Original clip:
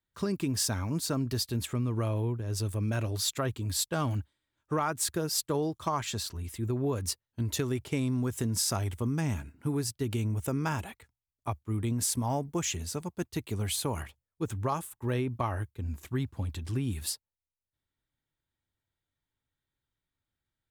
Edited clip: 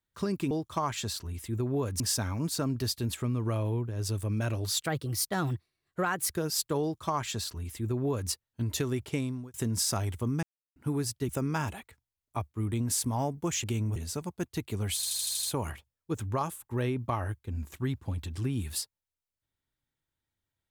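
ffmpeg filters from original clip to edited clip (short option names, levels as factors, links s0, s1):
-filter_complex "[0:a]asplit=17[s0][s1][s2][s3][s4][s5][s6][s7][s8][s9][s10][s11][s12][s13][s14][s15][s16];[s0]atrim=end=0.512[s17];[s1]atrim=start=5.608:end=7.102[s18];[s2]atrim=start=0.508:end=3.334[s19];[s3]atrim=start=3.33:end=5.09,asetpts=PTS-STARTPTS,asetrate=52479,aresample=44100[s20];[s4]atrim=start=5.086:end=8.33,asetpts=PTS-STARTPTS,afade=t=out:st=2.844:d=0.4[s21];[s5]atrim=start=8.33:end=9.22,asetpts=PTS-STARTPTS,afade=t=in:d=0.004:c=hsin,afade=t=out:st=0.886:d=0.004:c=hsin[s22];[s6]atrim=start=9.22:end=9.55,asetpts=PTS-STARTPTS,volume=0[s23];[s7]atrim=start=9.55:end=10.082,asetpts=PTS-STARTPTS,afade=t=in:d=0.004:c=hsin[s24];[s8]atrim=start=10.398:end=12.752[s25];[s9]atrim=start=10.078:end=10.402[s26];[s10]atrim=start=12.748:end=13.822[s27];[s11]atrim=start=13.738:end=13.822[s28];[s12]atrim=start=13.738:end=13.822[s29];[s13]atrim=start=13.738:end=13.822[s30];[s14]atrim=start=13.738:end=13.822[s31];[s15]atrim=start=13.738:end=13.822[s32];[s16]atrim=start=13.738[s33];[s17][s18]acrossfade=d=0.004:c1=hsin:c2=hsin[s34];[s34][s19]acrossfade=d=0.004:c1=hsin:c2=hsin[s35];[s35][s20]acrossfade=d=0.004:c1=hsin:c2=hsin[s36];[s21][s22][s23][s24]concat=n=4:v=0:a=1[s37];[s36][s37]acrossfade=d=0.004:c1=hsin:c2=hsin[s38];[s38][s25]acrossfade=d=0.004:c1=hsin:c2=hsin[s39];[s39][s26]acrossfade=d=0.004:c1=hsin:c2=hsin[s40];[s40][s27]acrossfade=d=0.004:c1=hsin:c2=hsin[s41];[s41][s28]acrossfade=d=0.004:c1=hsin:c2=hsin[s42];[s42][s29]acrossfade=d=0.004:c1=hsin:c2=hsin[s43];[s43][s30]acrossfade=d=0.004:c1=hsin:c2=hsin[s44];[s44][s31]acrossfade=d=0.004:c1=hsin:c2=hsin[s45];[s45][s32]acrossfade=d=0.004:c1=hsin:c2=hsin[s46];[s46][s33]acrossfade=d=0.004:c1=hsin:c2=hsin"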